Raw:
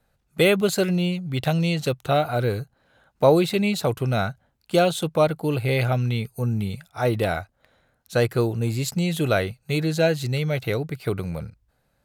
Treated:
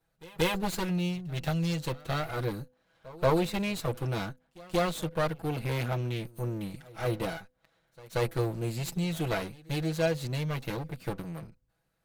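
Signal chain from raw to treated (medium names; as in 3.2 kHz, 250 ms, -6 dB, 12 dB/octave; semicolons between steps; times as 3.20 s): comb filter that takes the minimum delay 6.1 ms; de-hum 252.5 Hz, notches 2; pre-echo 182 ms -22 dB; trim -7 dB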